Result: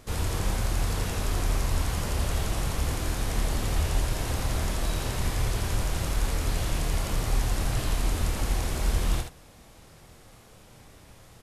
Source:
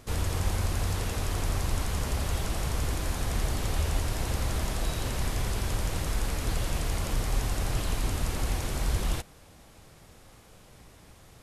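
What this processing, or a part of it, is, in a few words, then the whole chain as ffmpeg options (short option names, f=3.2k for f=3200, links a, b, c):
slapback doubling: -filter_complex "[0:a]asplit=3[a][b][c];[b]adelay=26,volume=-7.5dB[d];[c]adelay=74,volume=-6dB[e];[a][d][e]amix=inputs=3:normalize=0"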